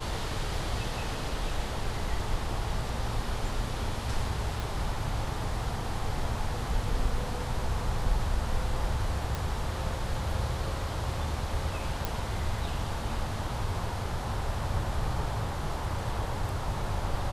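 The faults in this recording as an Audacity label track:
4.600000	4.600000	pop
9.350000	9.350000	pop
12.050000	12.050000	pop

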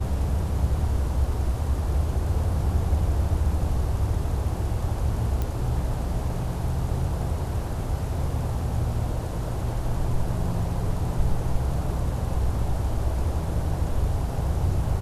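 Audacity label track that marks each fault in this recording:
5.420000	5.420000	pop -15 dBFS

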